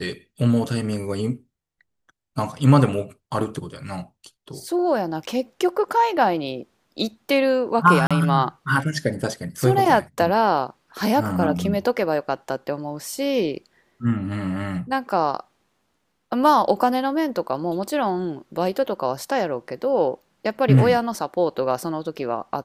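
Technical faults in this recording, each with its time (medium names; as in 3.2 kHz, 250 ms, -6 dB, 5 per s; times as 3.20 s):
8.07–8.11 s: dropout 36 ms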